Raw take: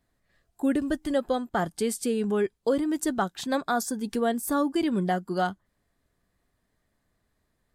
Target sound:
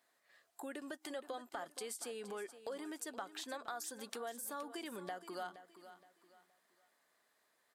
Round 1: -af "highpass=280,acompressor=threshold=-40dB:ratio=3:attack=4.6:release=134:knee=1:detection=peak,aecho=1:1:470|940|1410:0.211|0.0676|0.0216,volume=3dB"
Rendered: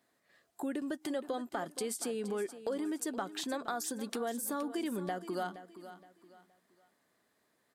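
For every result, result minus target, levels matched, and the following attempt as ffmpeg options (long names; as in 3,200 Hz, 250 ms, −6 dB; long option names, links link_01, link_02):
downward compressor: peak gain reduction −6 dB; 250 Hz band +4.5 dB
-af "highpass=280,acompressor=threshold=-50dB:ratio=3:attack=4.6:release=134:knee=1:detection=peak,aecho=1:1:470|940|1410:0.211|0.0676|0.0216,volume=3dB"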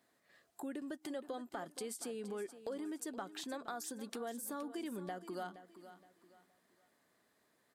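250 Hz band +4.5 dB
-af "highpass=610,acompressor=threshold=-50dB:ratio=3:attack=4.6:release=134:knee=1:detection=peak,aecho=1:1:470|940|1410:0.211|0.0676|0.0216,volume=3dB"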